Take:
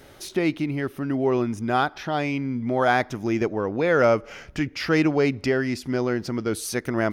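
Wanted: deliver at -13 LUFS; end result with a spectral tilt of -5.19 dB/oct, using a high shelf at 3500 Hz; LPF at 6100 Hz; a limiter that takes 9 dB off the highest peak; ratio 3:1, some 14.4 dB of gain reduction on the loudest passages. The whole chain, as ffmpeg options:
-af "lowpass=6.1k,highshelf=f=3.5k:g=-5.5,acompressor=threshold=-36dB:ratio=3,volume=27.5dB,alimiter=limit=-4dB:level=0:latency=1"

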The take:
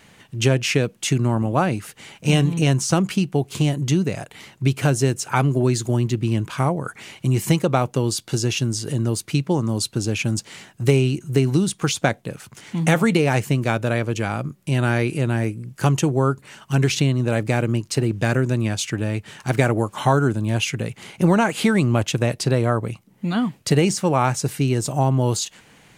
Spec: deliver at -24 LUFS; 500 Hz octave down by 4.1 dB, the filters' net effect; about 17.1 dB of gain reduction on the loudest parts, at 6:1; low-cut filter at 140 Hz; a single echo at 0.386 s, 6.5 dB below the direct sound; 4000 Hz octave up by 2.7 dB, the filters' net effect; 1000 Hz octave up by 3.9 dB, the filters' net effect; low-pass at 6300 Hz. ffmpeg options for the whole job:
-af "highpass=140,lowpass=6.3k,equalizer=f=500:t=o:g=-7.5,equalizer=f=1k:t=o:g=7.5,equalizer=f=4k:t=o:g=4,acompressor=threshold=-31dB:ratio=6,aecho=1:1:386:0.473,volume=10dB"

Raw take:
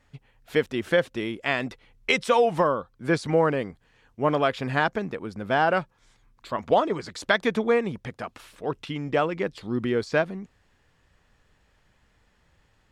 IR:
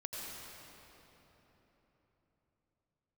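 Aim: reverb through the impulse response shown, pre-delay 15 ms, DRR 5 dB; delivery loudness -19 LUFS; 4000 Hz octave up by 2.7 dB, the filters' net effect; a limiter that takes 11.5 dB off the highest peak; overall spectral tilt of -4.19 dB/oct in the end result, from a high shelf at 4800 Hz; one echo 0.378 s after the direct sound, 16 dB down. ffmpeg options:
-filter_complex "[0:a]equalizer=f=4k:t=o:g=6.5,highshelf=f=4.8k:g=-6.5,alimiter=limit=-16.5dB:level=0:latency=1,aecho=1:1:378:0.158,asplit=2[a][b];[1:a]atrim=start_sample=2205,adelay=15[c];[b][c]afir=irnorm=-1:irlink=0,volume=-5.5dB[d];[a][d]amix=inputs=2:normalize=0,volume=9.5dB"

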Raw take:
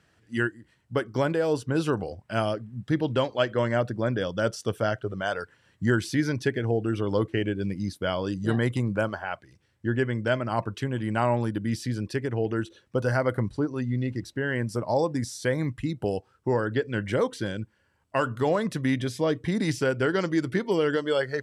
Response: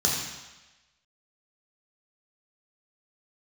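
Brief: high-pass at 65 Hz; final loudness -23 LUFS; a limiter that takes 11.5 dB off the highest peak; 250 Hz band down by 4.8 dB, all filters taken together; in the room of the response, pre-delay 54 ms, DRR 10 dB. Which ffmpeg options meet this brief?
-filter_complex "[0:a]highpass=65,equalizer=f=250:t=o:g=-6.5,alimiter=limit=-22.5dB:level=0:latency=1,asplit=2[a][b];[1:a]atrim=start_sample=2205,adelay=54[c];[b][c]afir=irnorm=-1:irlink=0,volume=-21.5dB[d];[a][d]amix=inputs=2:normalize=0,volume=10dB"

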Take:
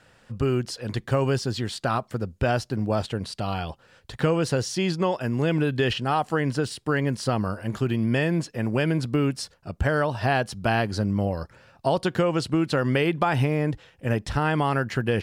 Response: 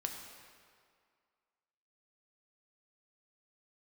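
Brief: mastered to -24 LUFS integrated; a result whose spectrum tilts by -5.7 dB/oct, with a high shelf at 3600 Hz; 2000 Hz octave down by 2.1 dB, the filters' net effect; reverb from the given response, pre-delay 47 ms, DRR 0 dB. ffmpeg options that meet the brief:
-filter_complex "[0:a]equalizer=f=2k:t=o:g=-4.5,highshelf=f=3.6k:g=6,asplit=2[a][b];[1:a]atrim=start_sample=2205,adelay=47[c];[b][c]afir=irnorm=-1:irlink=0,volume=-0.5dB[d];[a][d]amix=inputs=2:normalize=0,volume=-1.5dB"

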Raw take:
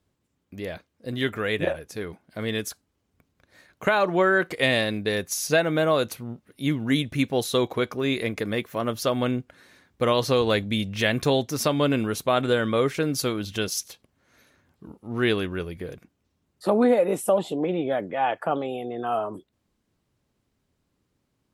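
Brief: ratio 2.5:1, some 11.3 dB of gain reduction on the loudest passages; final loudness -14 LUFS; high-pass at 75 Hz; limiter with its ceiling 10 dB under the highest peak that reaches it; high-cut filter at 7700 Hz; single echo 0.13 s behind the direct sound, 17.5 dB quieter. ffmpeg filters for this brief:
-af "highpass=75,lowpass=7.7k,acompressor=threshold=-34dB:ratio=2.5,alimiter=level_in=4dB:limit=-24dB:level=0:latency=1,volume=-4dB,aecho=1:1:130:0.133,volume=24.5dB"

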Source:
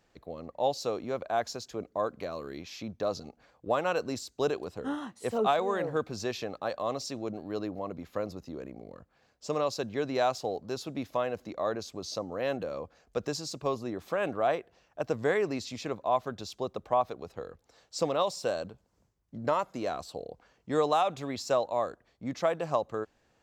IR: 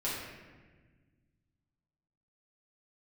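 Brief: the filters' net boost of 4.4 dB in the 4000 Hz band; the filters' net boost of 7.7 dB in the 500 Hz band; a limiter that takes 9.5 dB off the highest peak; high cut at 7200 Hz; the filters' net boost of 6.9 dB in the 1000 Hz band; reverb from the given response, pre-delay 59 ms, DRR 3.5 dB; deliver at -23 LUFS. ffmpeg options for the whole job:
-filter_complex "[0:a]lowpass=7.2k,equalizer=f=500:t=o:g=7.5,equalizer=f=1k:t=o:g=6,equalizer=f=4k:t=o:g=5.5,alimiter=limit=-16dB:level=0:latency=1,asplit=2[a][b];[1:a]atrim=start_sample=2205,adelay=59[c];[b][c]afir=irnorm=-1:irlink=0,volume=-9.5dB[d];[a][d]amix=inputs=2:normalize=0,volume=4dB"

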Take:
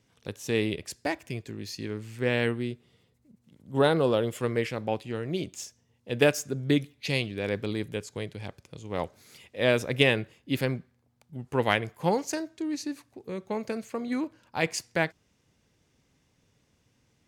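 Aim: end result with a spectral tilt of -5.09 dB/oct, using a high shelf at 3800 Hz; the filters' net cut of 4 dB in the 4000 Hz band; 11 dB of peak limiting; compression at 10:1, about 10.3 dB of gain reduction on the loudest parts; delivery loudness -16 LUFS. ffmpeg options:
-af "highshelf=f=3.8k:g=5.5,equalizer=f=4k:t=o:g=-9,acompressor=threshold=-27dB:ratio=10,volume=22.5dB,alimiter=limit=-4.5dB:level=0:latency=1"

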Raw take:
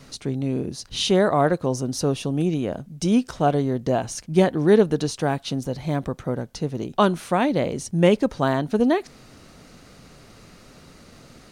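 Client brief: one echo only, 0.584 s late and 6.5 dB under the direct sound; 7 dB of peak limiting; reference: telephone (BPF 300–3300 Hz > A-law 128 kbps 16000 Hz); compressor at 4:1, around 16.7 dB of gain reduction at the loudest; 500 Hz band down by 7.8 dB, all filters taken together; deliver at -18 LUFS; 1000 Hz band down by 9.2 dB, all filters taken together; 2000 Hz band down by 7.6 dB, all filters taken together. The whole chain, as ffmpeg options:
-af "equalizer=f=500:t=o:g=-6.5,equalizer=f=1k:t=o:g=-9,equalizer=f=2k:t=o:g=-5.5,acompressor=threshold=-36dB:ratio=4,alimiter=level_in=5.5dB:limit=-24dB:level=0:latency=1,volume=-5.5dB,highpass=300,lowpass=3.3k,aecho=1:1:584:0.473,volume=26.5dB" -ar 16000 -c:a pcm_alaw

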